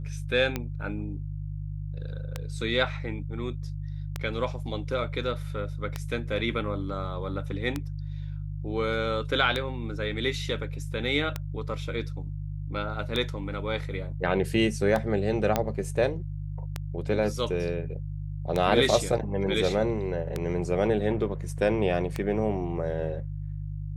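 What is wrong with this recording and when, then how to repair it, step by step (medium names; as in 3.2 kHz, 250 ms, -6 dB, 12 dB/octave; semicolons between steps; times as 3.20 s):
hum 50 Hz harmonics 3 -34 dBFS
tick 33 1/3 rpm -14 dBFS
15.56 s: pop -9 dBFS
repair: de-click; de-hum 50 Hz, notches 3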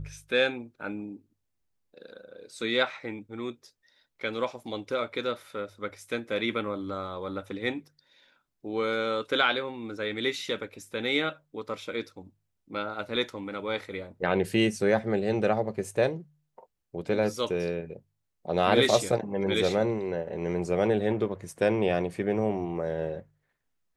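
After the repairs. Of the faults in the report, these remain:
nothing left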